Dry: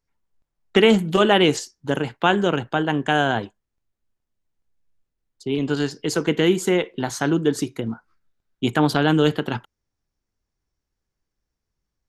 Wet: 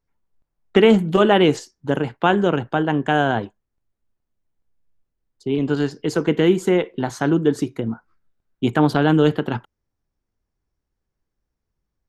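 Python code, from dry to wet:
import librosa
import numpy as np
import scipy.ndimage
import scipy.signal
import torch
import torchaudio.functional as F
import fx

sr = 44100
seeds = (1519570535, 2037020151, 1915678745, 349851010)

y = fx.high_shelf(x, sr, hz=2300.0, db=-9.5)
y = y * 10.0 ** (2.5 / 20.0)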